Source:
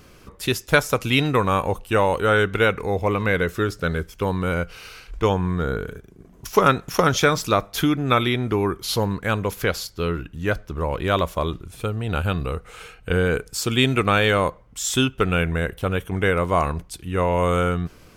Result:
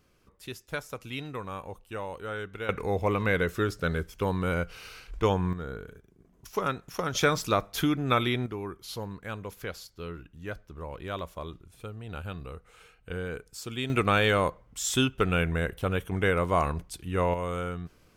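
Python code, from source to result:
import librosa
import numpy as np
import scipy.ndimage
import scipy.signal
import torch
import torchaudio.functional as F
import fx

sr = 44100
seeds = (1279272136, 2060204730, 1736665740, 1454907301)

y = fx.gain(x, sr, db=fx.steps((0.0, -17.5), (2.69, -5.0), (5.53, -13.0), (7.15, -6.0), (8.46, -14.5), (13.9, -5.0), (17.34, -12.0)))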